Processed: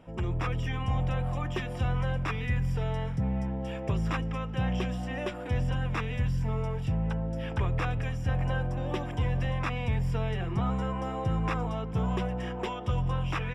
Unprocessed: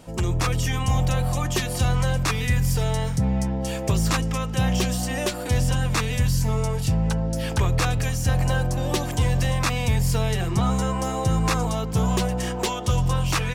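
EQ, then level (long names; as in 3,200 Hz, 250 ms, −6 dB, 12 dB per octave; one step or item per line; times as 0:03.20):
Savitzky-Golay smoothing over 25 samples
−7.0 dB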